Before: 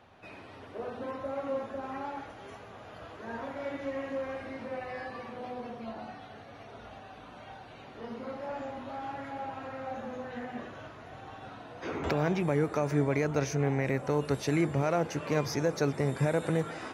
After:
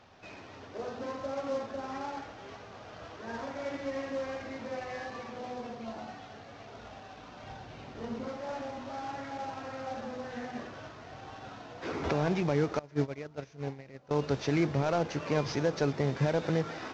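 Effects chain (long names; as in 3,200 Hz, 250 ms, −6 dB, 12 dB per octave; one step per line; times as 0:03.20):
variable-slope delta modulation 32 kbit/s
0:07.43–0:08.28: low-shelf EQ 240 Hz +8.5 dB
0:12.79–0:14.11: noise gate −25 dBFS, range −21 dB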